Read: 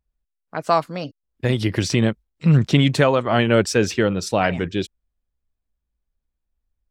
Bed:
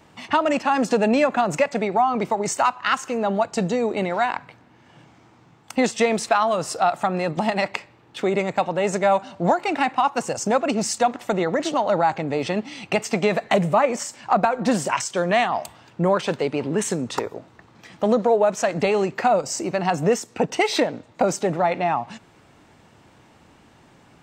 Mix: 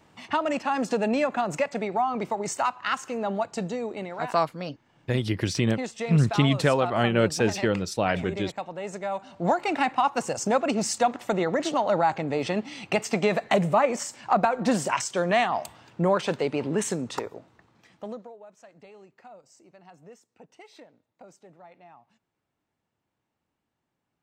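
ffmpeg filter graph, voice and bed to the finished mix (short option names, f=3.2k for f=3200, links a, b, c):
-filter_complex "[0:a]adelay=3650,volume=-5.5dB[a];[1:a]volume=3.5dB,afade=t=out:st=3.33:d=0.88:silence=0.473151,afade=t=in:st=9.12:d=0.47:silence=0.334965,afade=t=out:st=16.73:d=1.6:silence=0.0473151[b];[a][b]amix=inputs=2:normalize=0"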